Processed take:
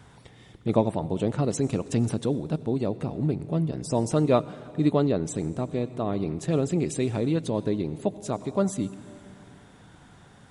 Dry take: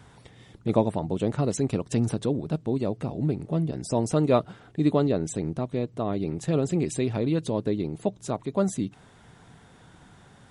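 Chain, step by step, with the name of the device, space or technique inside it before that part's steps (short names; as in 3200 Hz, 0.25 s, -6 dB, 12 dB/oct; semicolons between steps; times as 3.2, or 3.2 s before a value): compressed reverb return (on a send at -11 dB: reverb RT60 1.8 s, pre-delay 79 ms + compressor 4:1, threshold -28 dBFS, peak gain reduction 10.5 dB)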